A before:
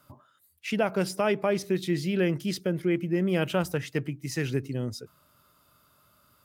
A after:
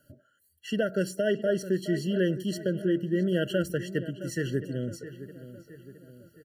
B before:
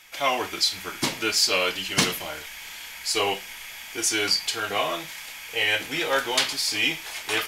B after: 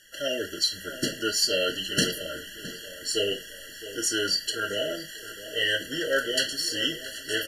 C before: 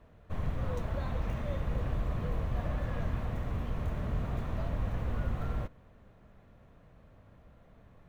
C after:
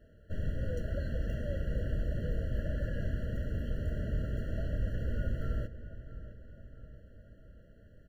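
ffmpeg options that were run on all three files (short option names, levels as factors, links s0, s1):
-filter_complex "[0:a]equalizer=f=140:t=o:w=0.77:g=-2.5,asplit=2[s0][s1];[s1]adelay=665,lowpass=f=2900:p=1,volume=0.211,asplit=2[s2][s3];[s3]adelay=665,lowpass=f=2900:p=1,volume=0.52,asplit=2[s4][s5];[s5]adelay=665,lowpass=f=2900:p=1,volume=0.52,asplit=2[s6][s7];[s7]adelay=665,lowpass=f=2900:p=1,volume=0.52,asplit=2[s8][s9];[s9]adelay=665,lowpass=f=2900:p=1,volume=0.52[s10];[s0][s2][s4][s6][s8][s10]amix=inputs=6:normalize=0,afftfilt=real='re*eq(mod(floor(b*sr/1024/670),2),0)':imag='im*eq(mod(floor(b*sr/1024/670),2),0)':win_size=1024:overlap=0.75"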